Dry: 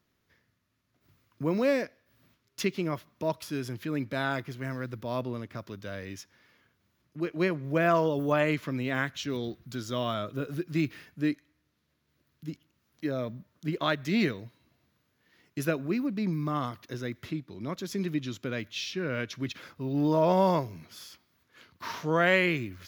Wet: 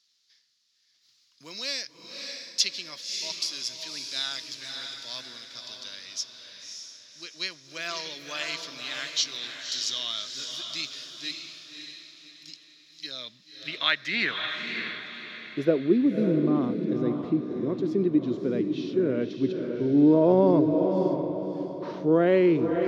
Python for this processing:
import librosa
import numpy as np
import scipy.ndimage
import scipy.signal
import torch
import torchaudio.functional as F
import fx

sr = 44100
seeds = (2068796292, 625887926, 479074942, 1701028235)

y = fx.graphic_eq(x, sr, hz=(125, 250, 4000, 8000), db=(5, 4, 10, 5))
y = fx.filter_sweep_bandpass(y, sr, from_hz=5200.0, to_hz=380.0, start_s=12.92, end_s=15.9, q=2.2)
y = fx.echo_diffused(y, sr, ms=579, feedback_pct=41, wet_db=-5)
y = y * 10.0 ** (8.5 / 20.0)